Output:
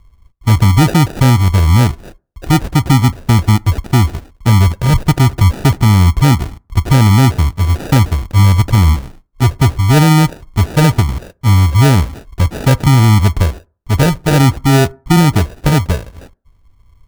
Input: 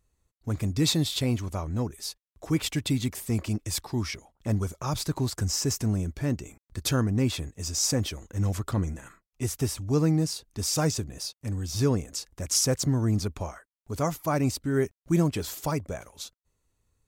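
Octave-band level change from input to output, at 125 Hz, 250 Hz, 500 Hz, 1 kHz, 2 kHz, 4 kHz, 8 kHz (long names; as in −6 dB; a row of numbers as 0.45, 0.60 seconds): +19.0, +14.0, +10.5, +19.5, +18.5, +10.0, +5.0 decibels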